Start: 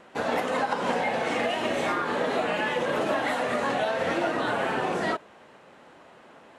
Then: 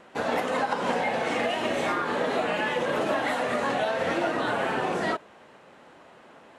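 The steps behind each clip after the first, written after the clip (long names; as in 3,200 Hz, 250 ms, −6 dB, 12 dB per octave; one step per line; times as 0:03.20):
no processing that can be heard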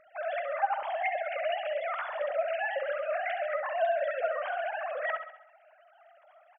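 three sine waves on the formant tracks
on a send: repeating echo 67 ms, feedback 51%, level −9 dB
on the sum: level −5.5 dB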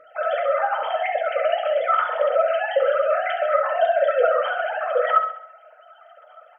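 hollow resonant body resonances 490/1,300/3,100 Hz, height 18 dB, ringing for 40 ms
convolution reverb RT60 0.40 s, pre-delay 3 ms, DRR 2.5 dB
level +2.5 dB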